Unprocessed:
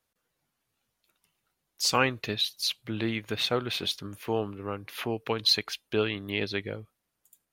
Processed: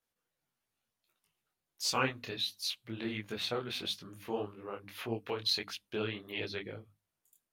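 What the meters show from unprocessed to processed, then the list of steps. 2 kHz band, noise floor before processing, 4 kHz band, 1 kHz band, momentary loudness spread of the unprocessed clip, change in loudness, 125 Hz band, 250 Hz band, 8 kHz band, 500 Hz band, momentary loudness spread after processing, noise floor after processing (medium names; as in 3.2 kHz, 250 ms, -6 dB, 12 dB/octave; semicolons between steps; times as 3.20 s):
-7.0 dB, -82 dBFS, -7.0 dB, -6.5 dB, 11 LU, -7.0 dB, -8.0 dB, -7.5 dB, -6.5 dB, -7.5 dB, 10 LU, under -85 dBFS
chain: hum notches 50/100/150/200/250/300 Hz; detune thickener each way 54 cents; trim -3.5 dB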